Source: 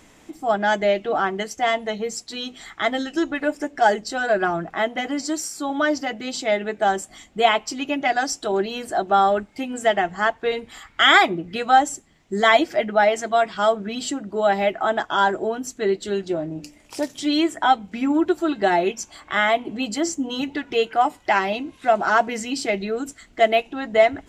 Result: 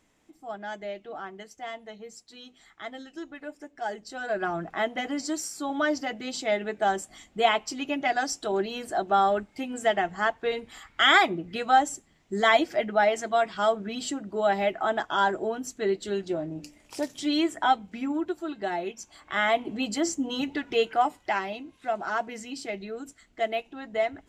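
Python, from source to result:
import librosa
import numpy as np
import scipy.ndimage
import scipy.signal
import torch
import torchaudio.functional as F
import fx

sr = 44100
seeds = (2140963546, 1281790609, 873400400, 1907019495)

y = fx.gain(x, sr, db=fx.line((3.78, -16.5), (4.65, -5.0), (17.68, -5.0), (18.38, -11.5), (18.93, -11.5), (19.59, -3.5), (20.9, -3.5), (21.57, -11.0)))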